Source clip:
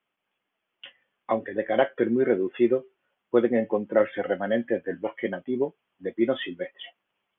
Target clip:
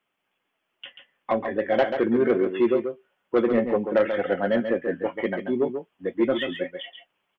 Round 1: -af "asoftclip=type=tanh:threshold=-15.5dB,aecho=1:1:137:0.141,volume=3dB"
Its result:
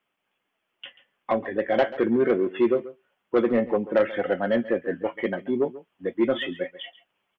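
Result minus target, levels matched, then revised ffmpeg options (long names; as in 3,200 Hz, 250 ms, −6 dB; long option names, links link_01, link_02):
echo-to-direct −9.5 dB
-af "asoftclip=type=tanh:threshold=-15.5dB,aecho=1:1:137:0.422,volume=3dB"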